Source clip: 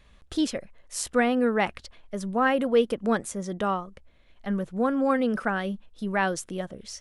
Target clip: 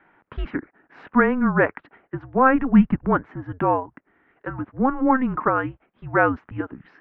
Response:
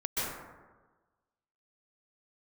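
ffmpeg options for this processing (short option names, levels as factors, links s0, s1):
-filter_complex "[0:a]crystalizer=i=3.5:c=0,highpass=f=400:t=q:w=0.5412,highpass=f=400:t=q:w=1.307,lowpass=f=2100:t=q:w=0.5176,lowpass=f=2100:t=q:w=0.7071,lowpass=f=2100:t=q:w=1.932,afreqshift=-260,asettb=1/sr,asplit=3[s0][s1][s2];[s0]atrim=end=2.384[s3];[s1]atrim=start=2.38:end=3.07,asetpts=PTS-STARTPTS,afade=t=in:d=0.004:c=qsin,afade=t=out:st=0.686:d=0.004:c=qsin,asubboost=boost=8.5:cutoff=210[s4];[s2]atrim=start=3.066[s5];[s3][s4]acrossfade=d=0.004:c1=hsin:c2=qsin[s6];[s6][s5]acrossfade=d=0.004:c1=qsin:c2=hsin,volume=2.11"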